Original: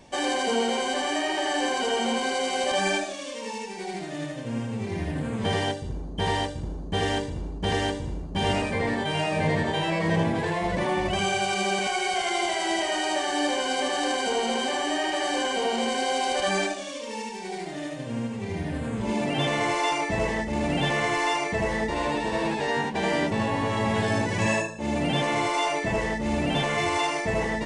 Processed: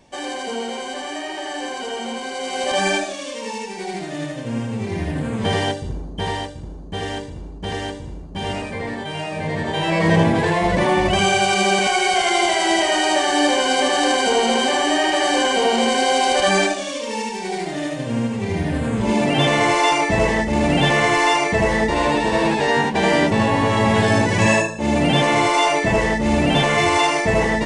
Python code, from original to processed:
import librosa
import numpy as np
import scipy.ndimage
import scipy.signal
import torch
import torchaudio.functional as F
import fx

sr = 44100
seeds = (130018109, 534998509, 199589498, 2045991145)

y = fx.gain(x, sr, db=fx.line((2.31, -2.0), (2.79, 5.5), (5.89, 5.5), (6.51, -1.0), (9.47, -1.0), (10.03, 8.5)))